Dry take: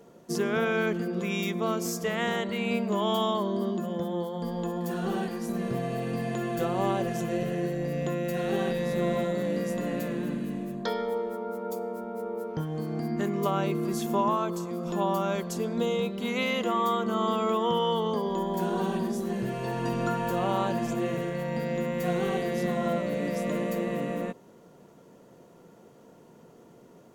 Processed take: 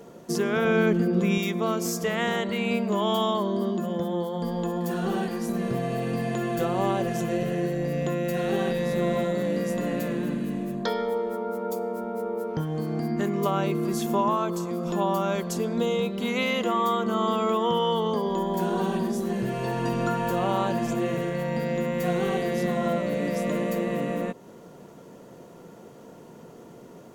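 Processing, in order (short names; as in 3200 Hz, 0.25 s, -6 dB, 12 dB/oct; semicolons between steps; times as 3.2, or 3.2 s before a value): 0.65–1.38 low shelf 400 Hz +8.5 dB; in parallel at +2 dB: compressor, threshold -38 dBFS, peak gain reduction 17.5 dB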